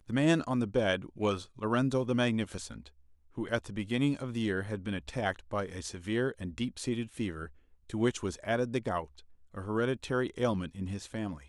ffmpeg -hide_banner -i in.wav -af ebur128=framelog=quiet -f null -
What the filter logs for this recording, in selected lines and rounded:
Integrated loudness:
  I:         -32.8 LUFS
  Threshold: -43.2 LUFS
Loudness range:
  LRA:         2.9 LU
  Threshold: -53.9 LUFS
  LRA low:   -35.2 LUFS
  LRA high:  -32.3 LUFS